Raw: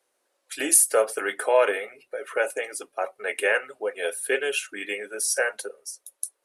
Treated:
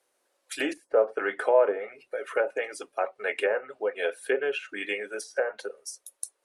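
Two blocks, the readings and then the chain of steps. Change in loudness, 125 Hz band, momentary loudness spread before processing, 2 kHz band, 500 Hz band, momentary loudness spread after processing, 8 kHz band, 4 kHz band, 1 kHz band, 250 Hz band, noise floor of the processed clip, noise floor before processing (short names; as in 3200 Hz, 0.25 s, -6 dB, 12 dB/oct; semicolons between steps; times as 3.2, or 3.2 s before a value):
-4.5 dB, n/a, 17 LU, -4.5 dB, -0.5 dB, 15 LU, -18.0 dB, -6.0 dB, -2.5 dB, 0.0 dB, -75 dBFS, -75 dBFS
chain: treble ducked by the level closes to 880 Hz, closed at -19.5 dBFS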